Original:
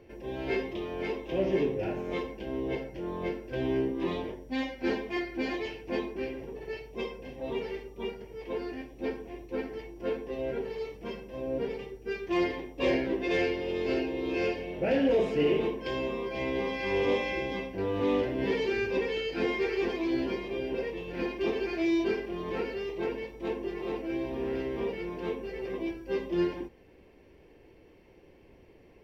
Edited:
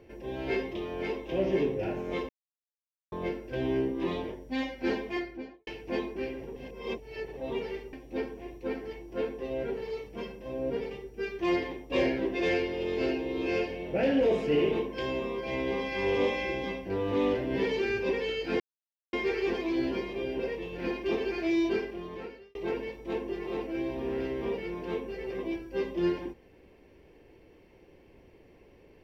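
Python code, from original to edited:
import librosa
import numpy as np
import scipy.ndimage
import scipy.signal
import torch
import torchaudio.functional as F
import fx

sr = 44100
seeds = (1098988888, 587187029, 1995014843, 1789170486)

y = fx.studio_fade_out(x, sr, start_s=5.08, length_s=0.59)
y = fx.edit(y, sr, fx.silence(start_s=2.29, length_s=0.83),
    fx.reverse_span(start_s=6.56, length_s=0.81),
    fx.cut(start_s=7.93, length_s=0.88),
    fx.insert_silence(at_s=19.48, length_s=0.53),
    fx.fade_out_span(start_s=22.08, length_s=0.82), tone=tone)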